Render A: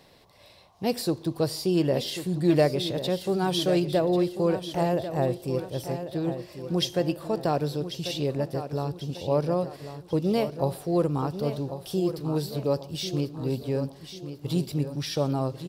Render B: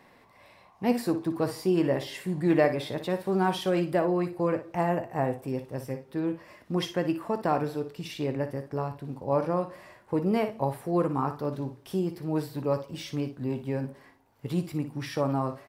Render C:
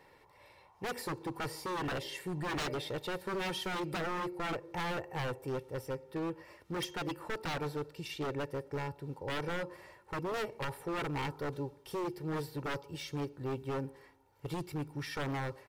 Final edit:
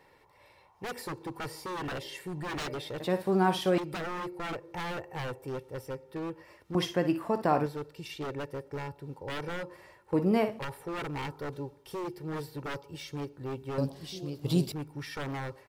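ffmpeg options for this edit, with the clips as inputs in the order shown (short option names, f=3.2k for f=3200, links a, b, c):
-filter_complex "[1:a]asplit=3[a][b][c];[2:a]asplit=5[d][e][f][g][h];[d]atrim=end=3.002[i];[a]atrim=start=2.998:end=3.782[j];[e]atrim=start=3.778:end=6.752[k];[b]atrim=start=6.748:end=7.662[l];[f]atrim=start=7.658:end=10.132[m];[c]atrim=start=10.128:end=10.592[n];[g]atrim=start=10.588:end=13.782[o];[0:a]atrim=start=13.778:end=14.722[p];[h]atrim=start=14.718[q];[i][j]acrossfade=d=0.004:c1=hsin:c2=hsin[r];[r][k]acrossfade=d=0.004:c1=hsin:c2=hsin[s];[s][l]acrossfade=d=0.004:c1=hsin:c2=hsin[t];[t][m]acrossfade=d=0.004:c1=hsin:c2=hsin[u];[u][n]acrossfade=d=0.004:c1=hsin:c2=hsin[v];[v][o]acrossfade=d=0.004:c1=hsin:c2=hsin[w];[w][p]acrossfade=d=0.004:c1=hsin:c2=hsin[x];[x][q]acrossfade=d=0.004:c1=hsin:c2=hsin"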